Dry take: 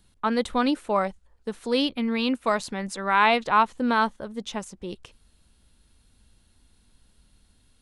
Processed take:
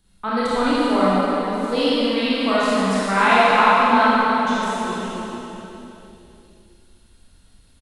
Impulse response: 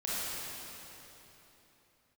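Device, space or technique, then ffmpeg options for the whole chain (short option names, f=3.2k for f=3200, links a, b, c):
cave: -filter_complex "[0:a]aecho=1:1:398:0.237[a];[1:a]atrim=start_sample=2205[b];[a][b]afir=irnorm=-1:irlink=0"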